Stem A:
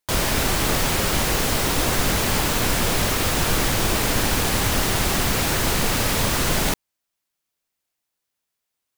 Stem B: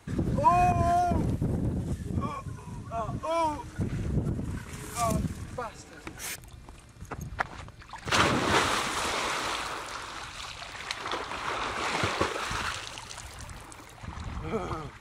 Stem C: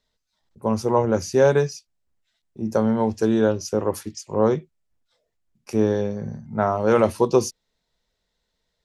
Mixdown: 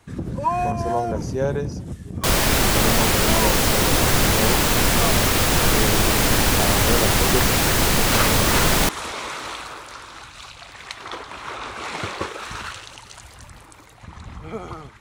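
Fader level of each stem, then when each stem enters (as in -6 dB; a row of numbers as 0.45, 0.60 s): +3.0, 0.0, -7.5 dB; 2.15, 0.00, 0.00 s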